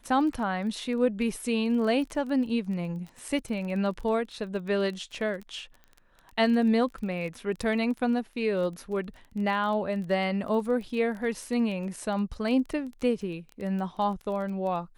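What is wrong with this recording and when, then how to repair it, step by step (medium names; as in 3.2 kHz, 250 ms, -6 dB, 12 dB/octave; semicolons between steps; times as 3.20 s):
crackle 21 per s -35 dBFS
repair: de-click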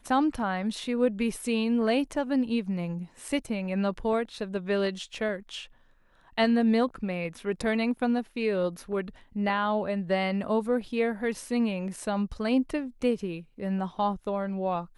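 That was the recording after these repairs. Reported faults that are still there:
nothing left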